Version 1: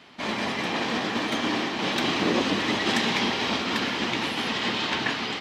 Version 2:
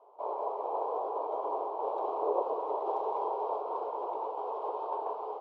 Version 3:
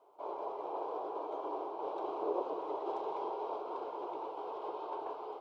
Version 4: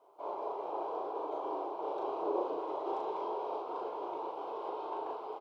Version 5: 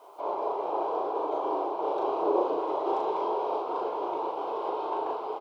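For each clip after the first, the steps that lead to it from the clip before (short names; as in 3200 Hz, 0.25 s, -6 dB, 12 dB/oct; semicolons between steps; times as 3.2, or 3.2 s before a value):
elliptic band-pass 420–1000 Hz, stop band 40 dB
band shelf 700 Hz -11 dB; gain +4.5 dB
doubler 37 ms -3 dB
mismatched tape noise reduction encoder only; gain +8 dB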